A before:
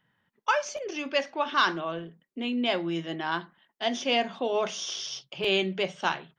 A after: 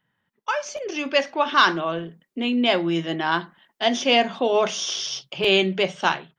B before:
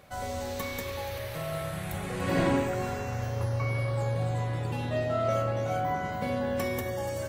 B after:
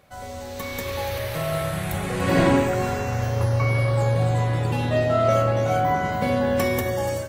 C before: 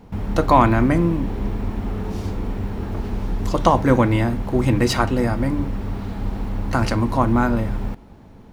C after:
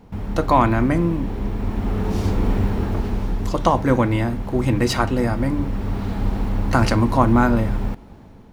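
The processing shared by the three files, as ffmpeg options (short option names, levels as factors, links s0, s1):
-af "dynaudnorm=f=510:g=3:m=3.35,volume=0.794"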